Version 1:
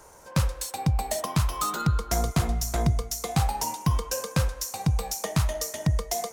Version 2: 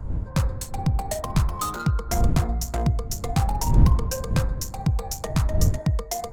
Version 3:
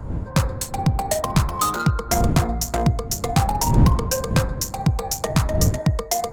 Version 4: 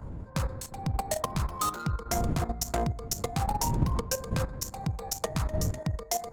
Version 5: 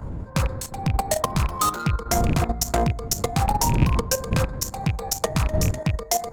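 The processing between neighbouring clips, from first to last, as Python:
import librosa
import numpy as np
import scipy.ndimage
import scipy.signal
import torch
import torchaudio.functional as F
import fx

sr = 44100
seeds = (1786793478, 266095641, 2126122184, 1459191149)

y1 = fx.wiener(x, sr, points=15)
y1 = fx.dmg_wind(y1, sr, seeds[0], corner_hz=87.0, level_db=-26.0)
y1 = y1 * librosa.db_to_amplitude(1.0)
y2 = fx.low_shelf(y1, sr, hz=84.0, db=-11.5)
y2 = y2 * librosa.db_to_amplitude(7.0)
y3 = fx.level_steps(y2, sr, step_db=11)
y3 = y3 * librosa.db_to_amplitude(-5.0)
y4 = fx.rattle_buzz(y3, sr, strikes_db=-24.0, level_db=-27.0)
y4 = y4 * librosa.db_to_amplitude(7.5)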